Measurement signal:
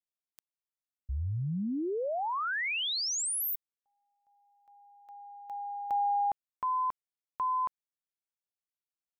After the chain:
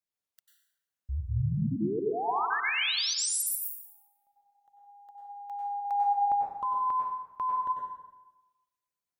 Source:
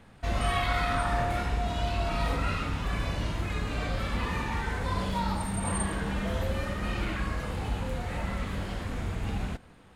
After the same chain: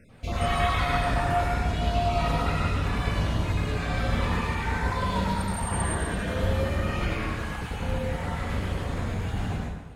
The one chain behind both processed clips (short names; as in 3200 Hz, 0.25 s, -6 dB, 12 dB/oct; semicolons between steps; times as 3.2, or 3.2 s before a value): random spectral dropouts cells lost 22%; bell 120 Hz +3.5 dB 1.6 oct; notches 50/100/150/200 Hz; on a send: dark delay 0.117 s, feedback 51%, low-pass 1600 Hz, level -18.5 dB; on the sum: plate-style reverb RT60 1 s, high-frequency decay 0.75×, pre-delay 85 ms, DRR -2 dB